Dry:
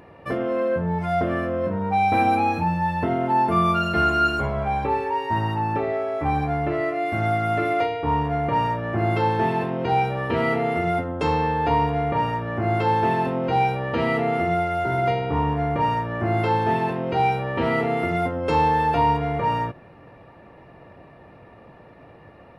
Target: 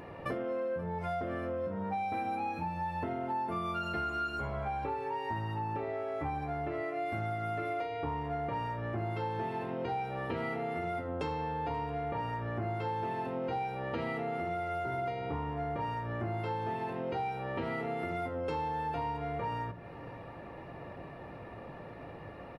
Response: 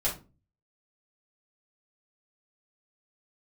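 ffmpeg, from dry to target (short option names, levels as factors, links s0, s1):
-filter_complex "[0:a]asplit=2[s0][s1];[1:a]atrim=start_sample=2205[s2];[s1][s2]afir=irnorm=-1:irlink=0,volume=0.112[s3];[s0][s3]amix=inputs=2:normalize=0,acompressor=threshold=0.02:ratio=6,asplit=2[s4][s5];[s5]aecho=0:1:532:0.0891[s6];[s4][s6]amix=inputs=2:normalize=0"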